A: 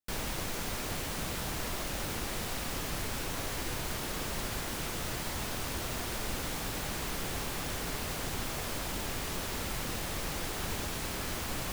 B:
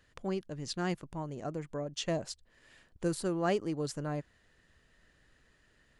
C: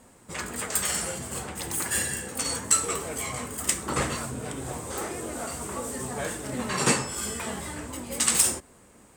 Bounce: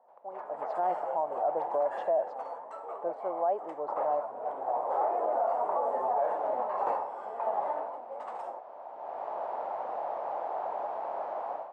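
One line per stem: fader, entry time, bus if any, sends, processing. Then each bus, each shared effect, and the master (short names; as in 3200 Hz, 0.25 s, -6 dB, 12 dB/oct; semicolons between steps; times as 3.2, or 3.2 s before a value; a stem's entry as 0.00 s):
-3.5 dB, 0.00 s, no send, auto duck -14 dB, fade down 0.20 s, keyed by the second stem
+1.0 dB, 0.00 s, no send, AGC gain up to 8 dB
+0.5 dB, 0.00 s, no send, dry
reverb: off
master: AGC gain up to 16.5 dB; Butterworth band-pass 740 Hz, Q 2.3; limiter -20.5 dBFS, peak gain reduction 10 dB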